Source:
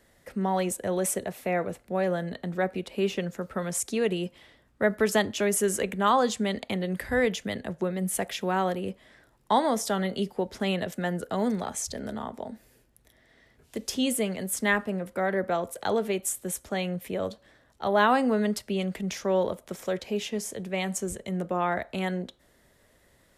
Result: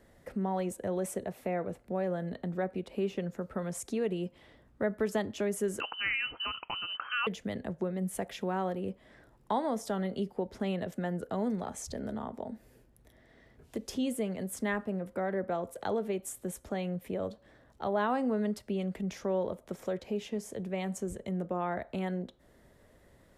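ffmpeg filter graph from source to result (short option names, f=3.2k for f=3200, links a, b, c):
-filter_complex "[0:a]asettb=1/sr,asplit=3[a][b][c];[a]atrim=end=5.804[d];[b]atrim=start=5.8:end=7.27,asetpts=PTS-STARTPTS,afade=t=in:d=0.004:c=qsin,afade=t=out:st=1.466:d=0.004:c=qsin,equalizer=f=2k:t=o:w=0.9:g=6,lowpass=f=2.7k:t=q:w=0.5098,lowpass=f=2.7k:t=q:w=0.6013,lowpass=f=2.7k:t=q:w=0.9,lowpass=f=2.7k:t=q:w=2.563,afreqshift=-3200[e];[c]atrim=start=7.266[f];[d][e]acrossfade=d=0.004:c1=hsin:c2=qsin[g];[g][f]acrossfade=d=0.004:c1=qsin:c2=hsin,tiltshelf=f=1.4k:g=5,acompressor=threshold=-41dB:ratio=1.5,volume=-1.5dB"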